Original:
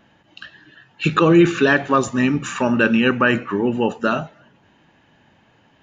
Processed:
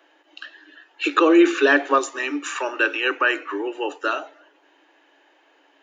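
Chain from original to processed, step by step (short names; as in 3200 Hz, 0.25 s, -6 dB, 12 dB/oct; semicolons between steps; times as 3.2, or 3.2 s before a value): Chebyshev high-pass 280 Hz, order 10; 1.98–4.22 dynamic EQ 500 Hz, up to -6 dB, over -33 dBFS, Q 0.76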